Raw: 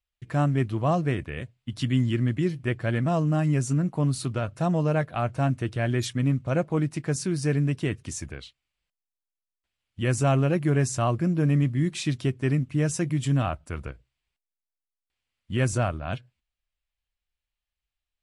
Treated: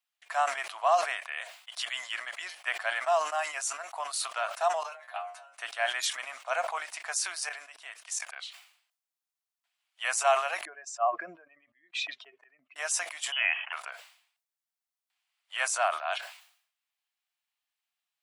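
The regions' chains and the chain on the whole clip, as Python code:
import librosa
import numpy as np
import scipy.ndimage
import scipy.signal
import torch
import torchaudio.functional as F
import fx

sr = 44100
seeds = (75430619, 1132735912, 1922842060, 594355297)

y = fx.chain(x, sr, fx.over_compress(threshold_db=-30.0, ratio=-0.5),
    fx.stiff_resonator(f0_hz=65.0, decay_s=0.4, stiffness=0.002), at=(4.83, 5.55))
y = fx.chain(y, sr, fx.hum_notches(base_hz=50, count=6),
    fx.level_steps(step_db=18), at=(7.49, 8.36))
y = fx.chain(y, sr, fx.spec_expand(power=1.9),
    fx.lowpass(hz=3900.0, slope=12),
    fx.auto_swell(attack_ms=154.0), at=(10.65, 12.76))
y = fx.chain(y, sr, fx.highpass(hz=440.0, slope=12),
    fx.freq_invert(carrier_hz=3200), at=(13.32, 13.73))
y = scipy.signal.sosfilt(scipy.signal.cheby1(5, 1.0, 680.0, 'highpass', fs=sr, output='sos'), y)
y = fx.sustainer(y, sr, db_per_s=96.0)
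y = y * 10.0 ** (4.0 / 20.0)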